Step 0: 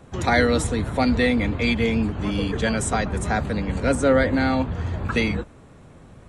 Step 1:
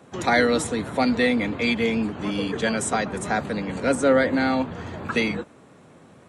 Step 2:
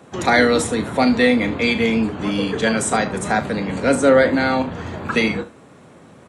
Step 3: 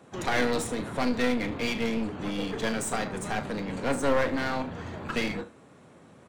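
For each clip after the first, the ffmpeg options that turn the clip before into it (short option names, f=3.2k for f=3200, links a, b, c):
-af "highpass=180"
-af "aecho=1:1:36|74:0.282|0.141,volume=4.5dB"
-af "aeval=exprs='clip(val(0),-1,0.0531)':c=same,volume=-8dB"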